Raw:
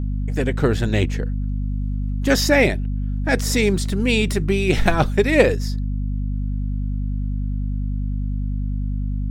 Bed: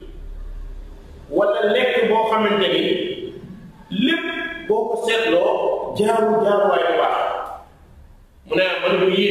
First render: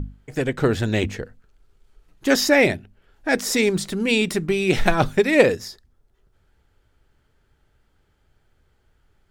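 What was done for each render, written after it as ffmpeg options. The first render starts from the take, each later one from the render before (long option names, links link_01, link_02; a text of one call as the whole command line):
ffmpeg -i in.wav -af "bandreject=frequency=50:width_type=h:width=6,bandreject=frequency=100:width_type=h:width=6,bandreject=frequency=150:width_type=h:width=6,bandreject=frequency=200:width_type=h:width=6,bandreject=frequency=250:width_type=h:width=6" out.wav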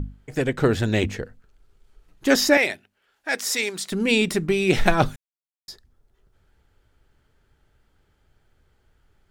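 ffmpeg -i in.wav -filter_complex "[0:a]asettb=1/sr,asplit=3[link_01][link_02][link_03];[link_01]atrim=end=2.574[link_04];[link_02]atrim=start=2.57:end=3.92,asetpts=PTS-STARTPTS,afade=type=in:duration=0.004:curve=qsin,afade=type=out:start_time=1.346:duration=0.004:curve=qsin,highpass=frequency=1300:poles=1[link_05];[link_03]atrim=start=3.916[link_06];[link_04][link_05]acrossfade=duration=0.004:curve1=hsin:curve2=qsin[link_07];[link_07][link_06]acrossfade=duration=0.004:curve1=qsin:curve2=hsin,asplit=3[link_08][link_09][link_10];[link_08]atrim=end=5.16,asetpts=PTS-STARTPTS,afade=type=out:start_time=5.156:duration=0.004:curve=hsin[link_11];[link_09]atrim=start=5.16:end=5.68,asetpts=PTS-STARTPTS,volume=0[link_12];[link_10]atrim=start=5.68,asetpts=PTS-STARTPTS,afade=type=in:duration=0.004:curve=hsin[link_13];[link_11][link_12][link_13]concat=n=3:v=0:a=1" out.wav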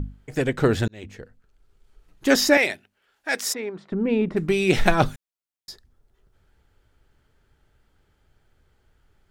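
ffmpeg -i in.wav -filter_complex "[0:a]asplit=3[link_01][link_02][link_03];[link_01]afade=type=out:start_time=3.52:duration=0.02[link_04];[link_02]lowpass=1100,afade=type=in:start_time=3.52:duration=0.02,afade=type=out:start_time=4.36:duration=0.02[link_05];[link_03]afade=type=in:start_time=4.36:duration=0.02[link_06];[link_04][link_05][link_06]amix=inputs=3:normalize=0,asplit=2[link_07][link_08];[link_07]atrim=end=0.88,asetpts=PTS-STARTPTS,afade=type=out:start_time=0.876:duration=0.004:curve=hsin[link_09];[link_08]atrim=start=0.88,asetpts=PTS-STARTPTS,afade=type=in:duration=1.49:curve=qsin[link_10];[link_09][link_10]concat=n=2:v=0:a=1" out.wav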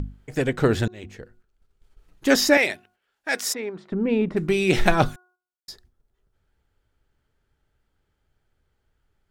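ffmpeg -i in.wav -af "bandreject=frequency=363:width_type=h:width=4,bandreject=frequency=726:width_type=h:width=4,bandreject=frequency=1089:width_type=h:width=4,bandreject=frequency=1452:width_type=h:width=4,agate=range=-8dB:threshold=-55dB:ratio=16:detection=peak" out.wav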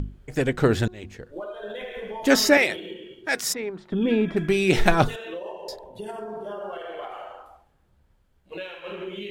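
ffmpeg -i in.wav -i bed.wav -filter_complex "[1:a]volume=-18dB[link_01];[0:a][link_01]amix=inputs=2:normalize=0" out.wav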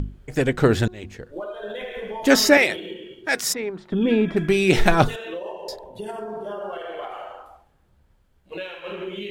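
ffmpeg -i in.wav -af "volume=2.5dB,alimiter=limit=-2dB:level=0:latency=1" out.wav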